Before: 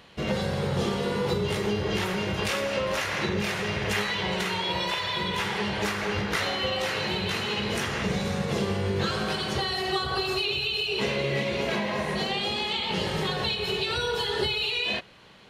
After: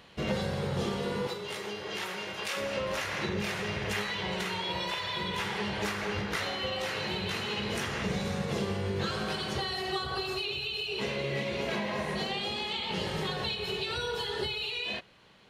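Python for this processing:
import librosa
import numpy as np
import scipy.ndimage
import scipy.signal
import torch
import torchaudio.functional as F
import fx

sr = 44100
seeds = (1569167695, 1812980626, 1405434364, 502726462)

y = fx.rider(x, sr, range_db=10, speed_s=0.5)
y = fx.highpass(y, sr, hz=710.0, slope=6, at=(1.27, 2.57))
y = y * 10.0 ** (-5.0 / 20.0)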